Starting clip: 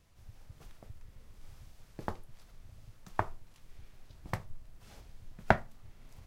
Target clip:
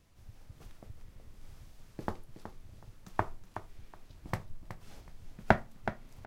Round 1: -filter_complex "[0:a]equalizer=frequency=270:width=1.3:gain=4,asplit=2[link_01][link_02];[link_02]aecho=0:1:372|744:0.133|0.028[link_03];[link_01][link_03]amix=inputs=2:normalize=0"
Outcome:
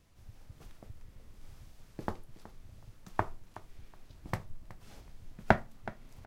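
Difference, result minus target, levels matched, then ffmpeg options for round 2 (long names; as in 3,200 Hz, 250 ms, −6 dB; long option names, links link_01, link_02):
echo-to-direct −6.5 dB
-filter_complex "[0:a]equalizer=frequency=270:width=1.3:gain=4,asplit=2[link_01][link_02];[link_02]aecho=0:1:372|744|1116:0.282|0.0592|0.0124[link_03];[link_01][link_03]amix=inputs=2:normalize=0"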